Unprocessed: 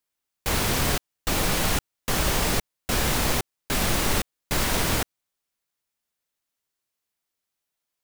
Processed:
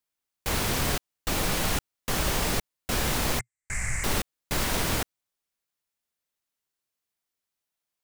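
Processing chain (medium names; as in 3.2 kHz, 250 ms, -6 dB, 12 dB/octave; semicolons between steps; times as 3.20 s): 3.39–4.04 s: FFT filter 120 Hz 0 dB, 270 Hz -22 dB, 1.3 kHz -9 dB, 2.1 kHz +6 dB, 3.4 kHz -29 dB, 7.8 kHz +5 dB, 15 kHz -29 dB; trim -3 dB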